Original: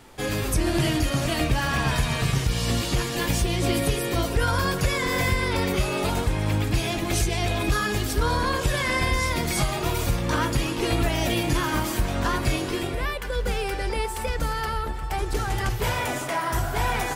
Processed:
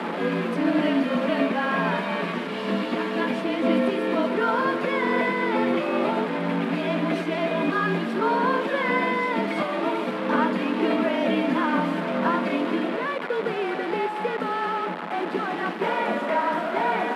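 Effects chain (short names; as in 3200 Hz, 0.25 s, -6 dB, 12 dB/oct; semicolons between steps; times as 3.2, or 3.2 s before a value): delta modulation 64 kbps, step -23.5 dBFS; notch 810 Hz, Q 12; frequency shift -34 Hz; rippled Chebyshev high-pass 170 Hz, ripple 3 dB; air absorption 500 m; gain +7 dB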